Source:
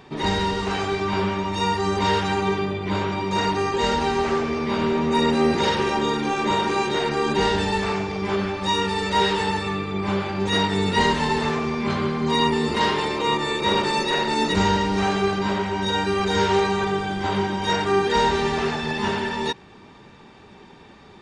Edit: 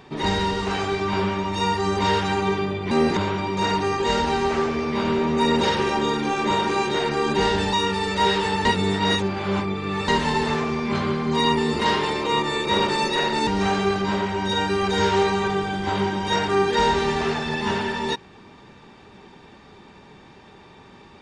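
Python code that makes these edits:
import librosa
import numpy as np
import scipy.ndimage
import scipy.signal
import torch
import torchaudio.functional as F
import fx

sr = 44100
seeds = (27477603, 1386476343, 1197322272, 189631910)

y = fx.edit(x, sr, fx.move(start_s=5.35, length_s=0.26, to_s=2.91),
    fx.cut(start_s=7.73, length_s=0.95),
    fx.reverse_span(start_s=9.6, length_s=1.43),
    fx.cut(start_s=14.42, length_s=0.42), tone=tone)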